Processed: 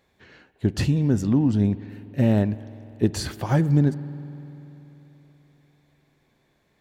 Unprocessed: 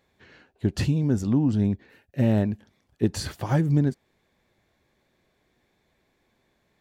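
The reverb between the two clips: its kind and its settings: spring tank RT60 3.6 s, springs 48 ms, chirp 50 ms, DRR 15.5 dB; trim +2 dB

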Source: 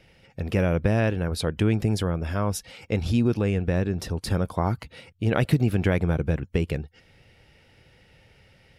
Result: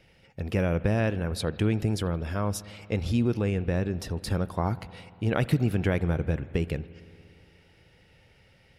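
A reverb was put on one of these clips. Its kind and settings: spring tank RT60 2.6 s, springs 58 ms, chirp 25 ms, DRR 16.5 dB; trim -3 dB

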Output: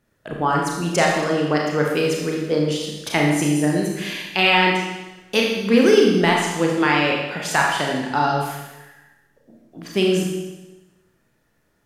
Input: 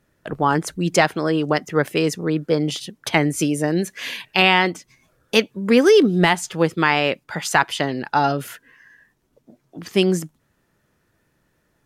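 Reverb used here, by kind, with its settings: Schroeder reverb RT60 1.1 s, combs from 27 ms, DRR -1.5 dB; trim -3.5 dB

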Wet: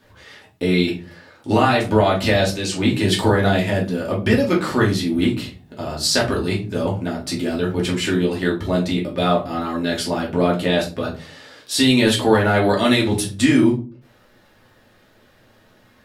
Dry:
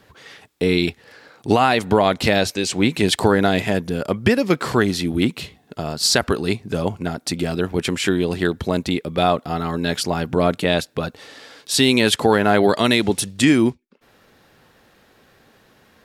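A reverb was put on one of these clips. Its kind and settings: simulated room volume 170 m³, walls furnished, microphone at 2.6 m; trim -6 dB

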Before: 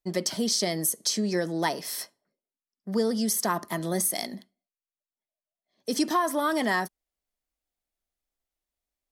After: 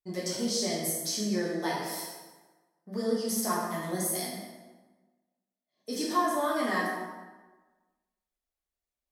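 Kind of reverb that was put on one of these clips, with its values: plate-style reverb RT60 1.3 s, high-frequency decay 0.65×, DRR -6.5 dB; trim -10.5 dB

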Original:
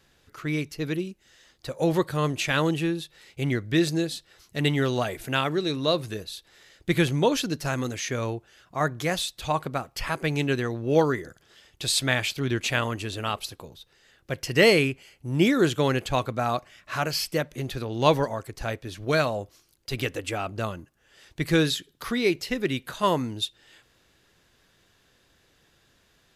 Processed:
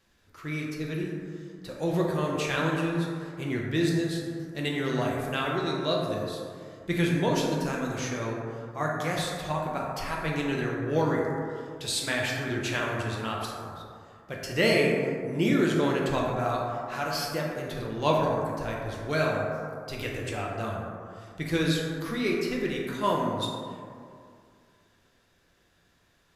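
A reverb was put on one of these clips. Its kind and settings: plate-style reverb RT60 2.3 s, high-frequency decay 0.3×, DRR -3 dB; trim -7 dB

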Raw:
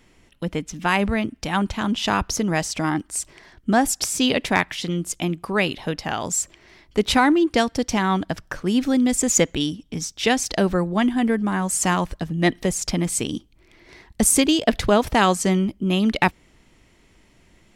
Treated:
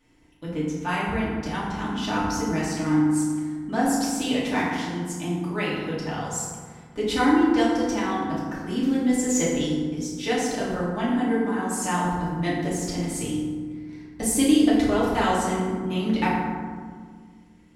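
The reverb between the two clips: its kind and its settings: FDN reverb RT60 1.7 s, low-frequency decay 1.55×, high-frequency decay 0.45×, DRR -8 dB; trim -13.5 dB

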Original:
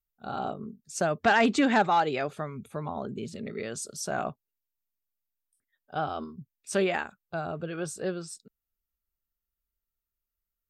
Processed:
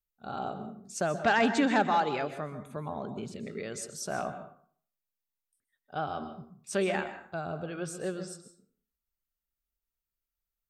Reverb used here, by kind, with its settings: plate-style reverb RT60 0.53 s, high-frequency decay 0.65×, pre-delay 115 ms, DRR 10 dB; trim -3 dB

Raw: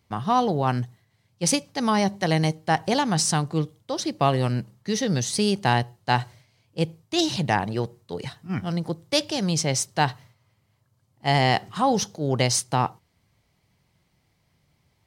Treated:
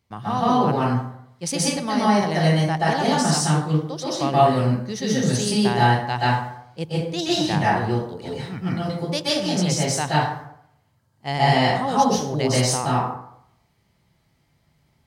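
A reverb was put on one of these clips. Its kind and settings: plate-style reverb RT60 0.72 s, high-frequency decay 0.55×, pre-delay 115 ms, DRR -7.5 dB; trim -5.5 dB

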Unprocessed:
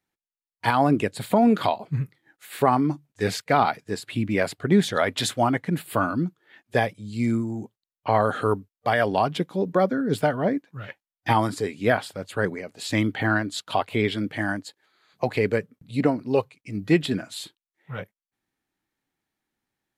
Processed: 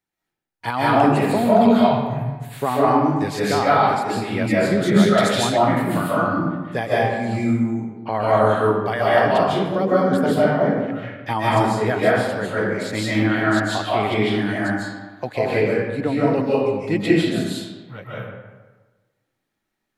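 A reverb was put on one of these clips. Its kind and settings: algorithmic reverb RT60 1.3 s, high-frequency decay 0.6×, pre-delay 110 ms, DRR -8 dB; trim -3.5 dB

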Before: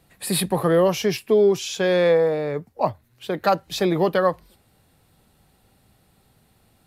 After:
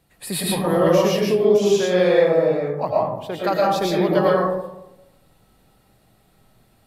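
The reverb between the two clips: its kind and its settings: algorithmic reverb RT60 0.94 s, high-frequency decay 0.35×, pre-delay 75 ms, DRR -5 dB; trim -4 dB

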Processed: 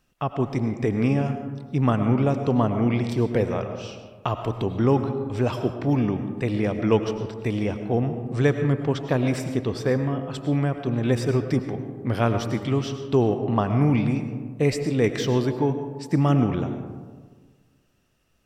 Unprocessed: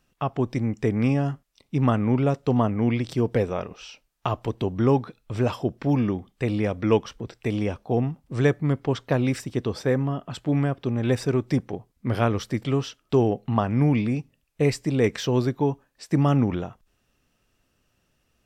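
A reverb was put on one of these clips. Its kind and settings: algorithmic reverb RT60 1.6 s, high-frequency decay 0.35×, pre-delay 65 ms, DRR 7.5 dB

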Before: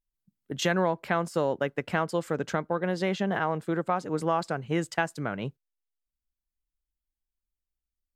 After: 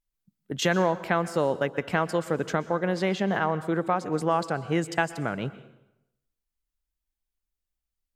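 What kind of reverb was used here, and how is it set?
plate-style reverb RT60 0.85 s, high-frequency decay 0.85×, pre-delay 110 ms, DRR 15 dB; trim +2 dB

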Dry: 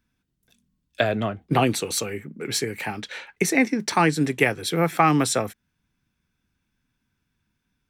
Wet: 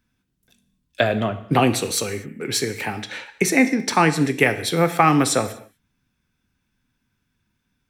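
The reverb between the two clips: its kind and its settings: gated-style reverb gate 270 ms falling, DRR 10 dB; trim +2.5 dB

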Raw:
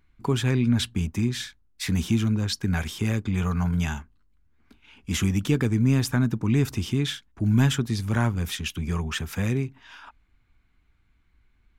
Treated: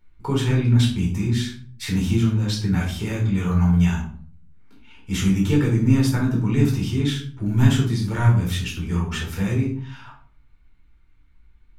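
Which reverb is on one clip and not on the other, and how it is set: simulated room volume 470 m³, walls furnished, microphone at 4.4 m; trim -5 dB

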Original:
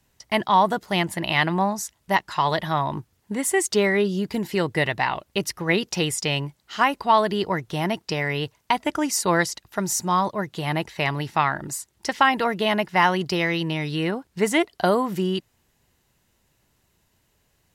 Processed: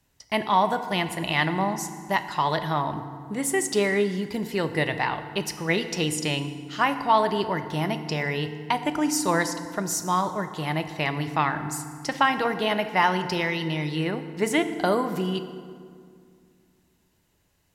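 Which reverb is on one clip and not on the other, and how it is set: FDN reverb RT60 2.1 s, low-frequency decay 1.4×, high-frequency decay 0.6×, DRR 8.5 dB; trim -3 dB

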